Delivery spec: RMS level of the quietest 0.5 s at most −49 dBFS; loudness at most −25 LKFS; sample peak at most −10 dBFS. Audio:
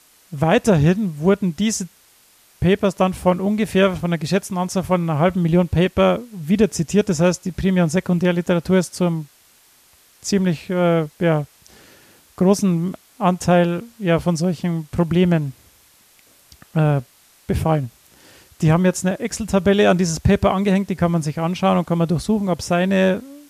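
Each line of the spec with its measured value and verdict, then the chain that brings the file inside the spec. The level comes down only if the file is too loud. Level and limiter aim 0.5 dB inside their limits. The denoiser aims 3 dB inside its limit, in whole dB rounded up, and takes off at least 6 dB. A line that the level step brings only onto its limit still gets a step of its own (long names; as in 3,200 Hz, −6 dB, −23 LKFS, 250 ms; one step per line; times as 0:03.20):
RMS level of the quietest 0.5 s −54 dBFS: in spec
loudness −19.0 LKFS: out of spec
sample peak −3.5 dBFS: out of spec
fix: level −6.5 dB
brickwall limiter −10.5 dBFS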